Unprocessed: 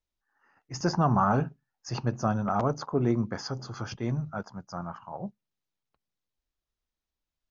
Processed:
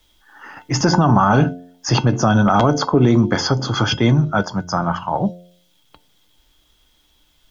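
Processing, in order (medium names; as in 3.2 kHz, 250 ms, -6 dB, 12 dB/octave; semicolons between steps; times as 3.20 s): peaking EQ 3.3 kHz +14.5 dB 0.2 oct; feedback comb 300 Hz, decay 0.19 s, harmonics odd, mix 70%; de-hum 88.48 Hz, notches 8; loudness maximiser +29 dB; three bands compressed up and down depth 40%; trim -3.5 dB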